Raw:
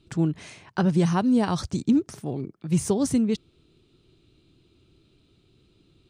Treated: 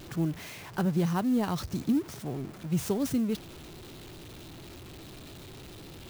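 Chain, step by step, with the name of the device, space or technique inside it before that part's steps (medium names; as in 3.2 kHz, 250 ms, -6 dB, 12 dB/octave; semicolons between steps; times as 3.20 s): early CD player with a faulty converter (jump at every zero crossing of -34 dBFS; sampling jitter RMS 0.022 ms); trim -6.5 dB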